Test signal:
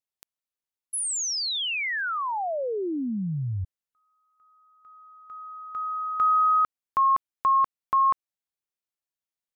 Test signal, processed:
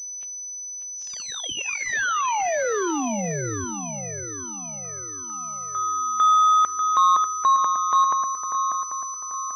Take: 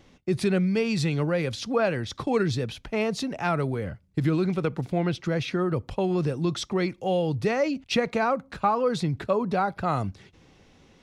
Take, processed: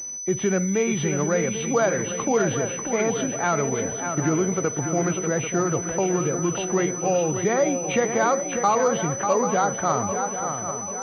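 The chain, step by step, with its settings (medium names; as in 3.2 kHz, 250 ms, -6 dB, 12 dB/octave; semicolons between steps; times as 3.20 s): knee-point frequency compression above 1.9 kHz 1.5:1; high-pass 300 Hz 6 dB/octave; on a send: shuffle delay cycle 790 ms, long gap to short 3:1, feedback 44%, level -8 dB; on the sum: Schroeder reverb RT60 0.42 s, combs from 31 ms, DRR 18.5 dB; in parallel at -2 dB: peak limiter -19 dBFS; on the sum: class-D stage that switches slowly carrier 6 kHz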